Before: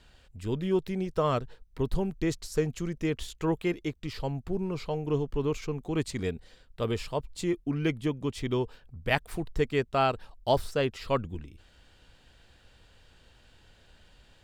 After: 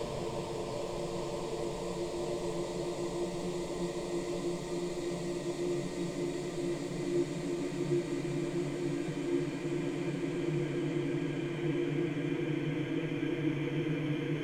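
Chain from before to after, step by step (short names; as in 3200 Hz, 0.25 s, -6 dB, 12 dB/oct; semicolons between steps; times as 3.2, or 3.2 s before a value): delay with a stepping band-pass 0.223 s, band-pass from 440 Hz, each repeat 0.7 oct, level -6 dB; Paulstretch 22×, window 1.00 s, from 7.2; gain -4.5 dB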